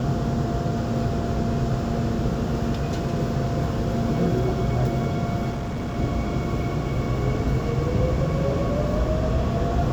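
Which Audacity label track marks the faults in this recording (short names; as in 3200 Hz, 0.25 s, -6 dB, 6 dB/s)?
5.520000	5.970000	clipped -25 dBFS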